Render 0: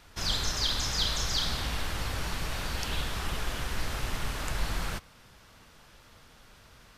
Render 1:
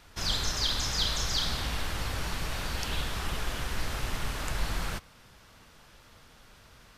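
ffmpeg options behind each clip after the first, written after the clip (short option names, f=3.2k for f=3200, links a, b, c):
-af anull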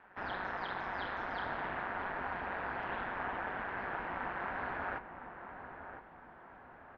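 -filter_complex "[0:a]highpass=f=160:w=0.5412,highpass=f=160:w=1.3066,equalizer=f=200:t=q:w=4:g=-5,equalizer=f=380:t=q:w=4:g=-3,equalizer=f=830:t=q:w=4:g=9,equalizer=f=1.6k:t=q:w=4:g=6,lowpass=f=2k:w=0.5412,lowpass=f=2k:w=1.3066,aeval=exprs='val(0)*sin(2*PI*95*n/s)':c=same,asplit=2[a][b];[b]adelay=1009,lowpass=f=1.4k:p=1,volume=-8dB,asplit=2[c][d];[d]adelay=1009,lowpass=f=1.4k:p=1,volume=0.48,asplit=2[e][f];[f]adelay=1009,lowpass=f=1.4k:p=1,volume=0.48,asplit=2[g][h];[h]adelay=1009,lowpass=f=1.4k:p=1,volume=0.48,asplit=2[i][j];[j]adelay=1009,lowpass=f=1.4k:p=1,volume=0.48,asplit=2[k][l];[l]adelay=1009,lowpass=f=1.4k:p=1,volume=0.48[m];[a][c][e][g][i][k][m]amix=inputs=7:normalize=0"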